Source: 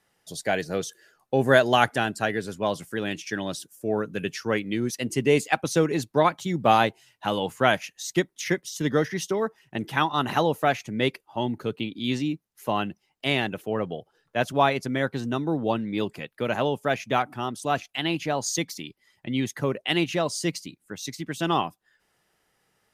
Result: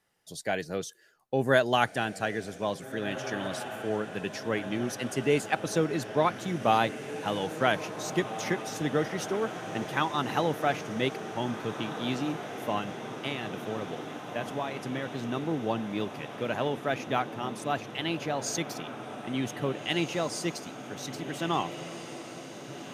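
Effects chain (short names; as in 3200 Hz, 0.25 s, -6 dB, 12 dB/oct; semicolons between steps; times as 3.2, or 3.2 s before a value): 12.78–15.21 compressor, threshold -25 dBFS, peak gain reduction 10.5 dB; diffused feedback echo 1.767 s, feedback 74%, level -11 dB; gain -5 dB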